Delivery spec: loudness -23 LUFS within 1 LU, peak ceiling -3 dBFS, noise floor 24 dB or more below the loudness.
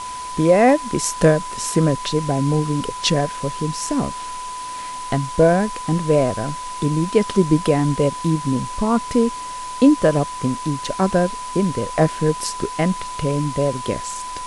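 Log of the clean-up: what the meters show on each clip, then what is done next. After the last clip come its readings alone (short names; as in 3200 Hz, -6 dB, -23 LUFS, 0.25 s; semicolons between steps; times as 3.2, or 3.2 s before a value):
steady tone 1000 Hz; tone level -28 dBFS; noise floor -30 dBFS; noise floor target -44 dBFS; loudness -20.0 LUFS; peak -2.5 dBFS; loudness target -23.0 LUFS
-> notch 1000 Hz, Q 30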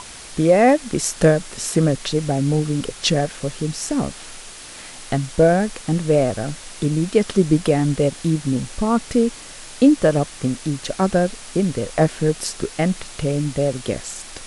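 steady tone none; noise floor -38 dBFS; noise floor target -44 dBFS
-> denoiser 6 dB, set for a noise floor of -38 dBFS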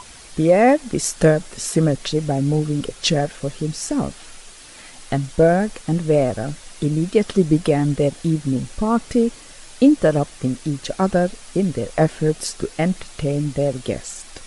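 noise floor -42 dBFS; noise floor target -44 dBFS
-> denoiser 6 dB, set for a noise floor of -42 dBFS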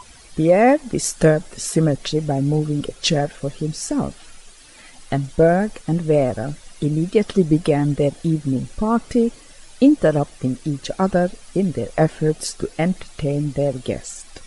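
noise floor -45 dBFS; loudness -20.0 LUFS; peak -3.0 dBFS; loudness target -23.0 LUFS
-> gain -3 dB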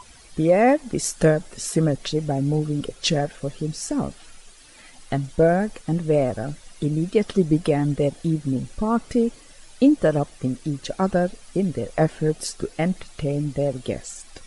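loudness -23.0 LUFS; peak -6.0 dBFS; noise floor -48 dBFS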